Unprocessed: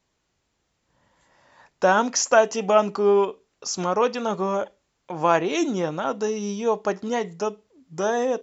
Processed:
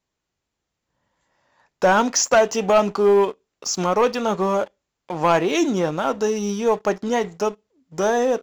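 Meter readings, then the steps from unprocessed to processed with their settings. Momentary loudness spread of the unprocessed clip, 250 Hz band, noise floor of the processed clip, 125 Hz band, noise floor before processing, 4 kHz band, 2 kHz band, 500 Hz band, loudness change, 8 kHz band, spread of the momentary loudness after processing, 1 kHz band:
11 LU, +3.5 dB, -81 dBFS, +4.0 dB, -74 dBFS, +3.5 dB, +2.0 dB, +3.0 dB, +2.5 dB, n/a, 9 LU, +2.0 dB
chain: sample leveller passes 2; gain -3.5 dB

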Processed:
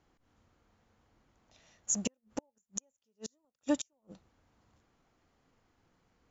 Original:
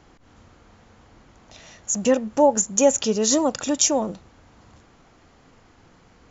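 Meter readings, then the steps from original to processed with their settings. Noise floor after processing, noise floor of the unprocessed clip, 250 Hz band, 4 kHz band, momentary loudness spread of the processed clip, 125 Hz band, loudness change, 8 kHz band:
-84 dBFS, -55 dBFS, -15.0 dB, -20.0 dB, 15 LU, -14.0 dB, -17.5 dB, n/a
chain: flipped gate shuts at -13 dBFS, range -38 dB; upward expander 1.5:1, over -46 dBFS; gain -5 dB

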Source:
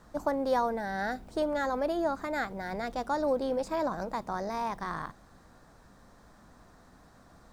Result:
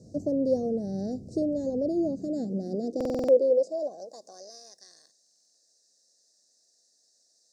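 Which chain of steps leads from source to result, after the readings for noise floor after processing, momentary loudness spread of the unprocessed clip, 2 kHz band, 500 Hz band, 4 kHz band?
-68 dBFS, 7 LU, under -20 dB, +5.0 dB, n/a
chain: inverse Chebyshev band-stop 890–3300 Hz, stop band 40 dB; high-pass sweep 110 Hz -> 2200 Hz, 1.9–4.95; air absorption 120 m; stuck buffer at 2.96/5.22, samples 2048, times 6; mismatched tape noise reduction encoder only; gain +5.5 dB

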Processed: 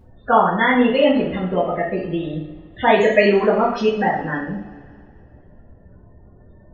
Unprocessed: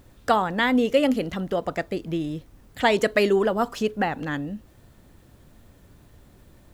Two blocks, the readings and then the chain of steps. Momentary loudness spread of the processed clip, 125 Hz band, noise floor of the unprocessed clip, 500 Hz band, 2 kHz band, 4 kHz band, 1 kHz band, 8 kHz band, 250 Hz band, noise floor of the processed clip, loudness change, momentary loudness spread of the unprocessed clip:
13 LU, +5.5 dB, -54 dBFS, +6.0 dB, +6.0 dB, +2.5 dB, +7.0 dB, n/a, +4.5 dB, -48 dBFS, +6.0 dB, 11 LU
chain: loudest bins only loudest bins 32; two-slope reverb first 0.54 s, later 2.5 s, from -21 dB, DRR -8 dB; gain -1.5 dB

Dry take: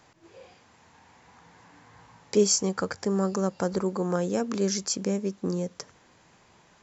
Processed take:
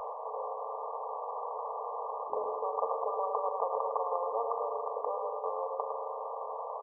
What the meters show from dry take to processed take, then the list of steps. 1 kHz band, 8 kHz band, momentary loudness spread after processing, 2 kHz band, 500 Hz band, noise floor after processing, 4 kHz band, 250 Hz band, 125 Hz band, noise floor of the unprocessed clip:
+7.5 dB, n/a, 6 LU, under -35 dB, -4.5 dB, -40 dBFS, under -40 dB, under -35 dB, under -40 dB, -60 dBFS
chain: echo 0.106 s -10 dB; FFT band-pass 420–1200 Hz; spring tank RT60 1.6 s, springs 39 ms, chirp 60 ms, DRR 9 dB; spectral compressor 4:1

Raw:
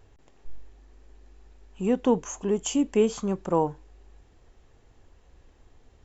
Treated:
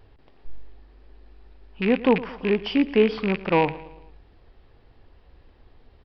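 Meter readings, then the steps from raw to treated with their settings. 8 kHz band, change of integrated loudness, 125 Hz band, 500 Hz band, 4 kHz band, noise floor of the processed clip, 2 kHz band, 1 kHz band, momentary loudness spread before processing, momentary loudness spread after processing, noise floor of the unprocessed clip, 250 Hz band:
n/a, +3.5 dB, +3.5 dB, +3.5 dB, +6.5 dB, -56 dBFS, +15.5 dB, +4.0 dB, 7 LU, 7 LU, -59 dBFS, +3.0 dB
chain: rattling part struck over -34 dBFS, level -23 dBFS; vibrato 7.8 Hz 39 cents; downsampling 11025 Hz; feedback echo 0.112 s, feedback 51%, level -18 dB; dynamic EQ 1900 Hz, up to +7 dB, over -50 dBFS, Q 1.6; gain +3 dB

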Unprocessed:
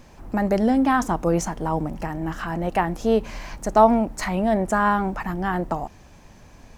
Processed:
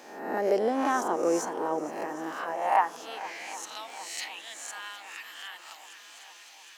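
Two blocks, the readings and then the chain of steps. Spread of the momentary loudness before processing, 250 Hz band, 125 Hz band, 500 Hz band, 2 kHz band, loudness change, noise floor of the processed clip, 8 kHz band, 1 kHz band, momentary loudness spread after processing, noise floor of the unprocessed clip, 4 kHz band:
12 LU, -13.5 dB, -25.0 dB, -7.0 dB, -6.5 dB, -8.0 dB, -51 dBFS, -2.0 dB, -7.0 dB, 20 LU, -49 dBFS, +0.5 dB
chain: spectral swells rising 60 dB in 0.71 s; low shelf 97 Hz -10.5 dB; high-pass sweep 390 Hz -> 3000 Hz, 2.2–3.69; on a send: swung echo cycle 0.763 s, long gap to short 1.5:1, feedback 52%, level -17 dB; on the sum: mismatched tape noise reduction encoder only; gain -8.5 dB

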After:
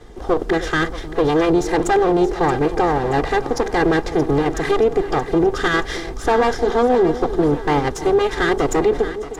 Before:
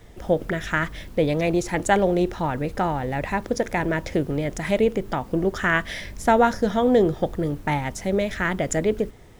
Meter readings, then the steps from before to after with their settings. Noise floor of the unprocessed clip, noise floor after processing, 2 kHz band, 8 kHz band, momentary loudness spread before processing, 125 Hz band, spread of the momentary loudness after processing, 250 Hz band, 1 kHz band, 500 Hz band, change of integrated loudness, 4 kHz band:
-43 dBFS, -30 dBFS, +3.0 dB, +1.5 dB, 8 LU, +1.5 dB, 5 LU, +4.5 dB, +5.5 dB, +6.0 dB, +5.0 dB, +6.5 dB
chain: minimum comb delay 2.5 ms; fifteen-band EQ 100 Hz -8 dB, 400 Hz +3 dB, 2500 Hz -7 dB; in parallel at 0 dB: level quantiser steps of 9 dB; on the sum: limiter -13 dBFS, peak gain reduction 9.5 dB; air absorption 55 m; on a send: split-band echo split 830 Hz, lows 0.31 s, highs 0.626 s, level -12.5 dB; on the sum: gain +4.5 dB

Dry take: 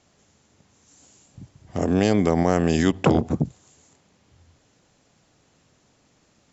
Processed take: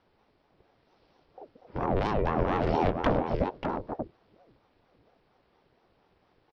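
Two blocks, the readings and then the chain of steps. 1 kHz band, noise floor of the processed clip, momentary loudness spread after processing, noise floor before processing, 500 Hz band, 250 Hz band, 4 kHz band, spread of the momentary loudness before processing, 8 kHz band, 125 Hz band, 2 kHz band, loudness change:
0.0 dB, -69 dBFS, 12 LU, -63 dBFS, -5.5 dB, -10.5 dB, -9.0 dB, 9 LU, n/a, -8.0 dB, -5.5 dB, -8.0 dB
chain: high shelf 3800 Hz -11.5 dB; downsampling 11025 Hz; tube stage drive 15 dB, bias 0.5; on a send: echo 0.587 s -6 dB; on the sum: ring modulator with a swept carrier 420 Hz, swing 55%, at 4.3 Hz

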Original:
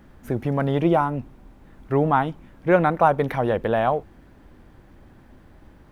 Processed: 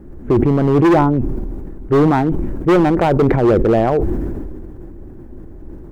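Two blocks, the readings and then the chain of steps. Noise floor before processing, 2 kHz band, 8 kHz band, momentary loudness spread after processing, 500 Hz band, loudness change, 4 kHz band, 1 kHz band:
-51 dBFS, +2.5 dB, n/a, 15 LU, +7.0 dB, +7.0 dB, +6.0 dB, +2.5 dB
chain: Wiener smoothing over 9 samples; tilt -3 dB/oct; requantised 12-bit, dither none; bell 360 Hz +13 dB 0.74 oct; hard clip -9 dBFS, distortion -7 dB; sustainer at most 25 dB/s

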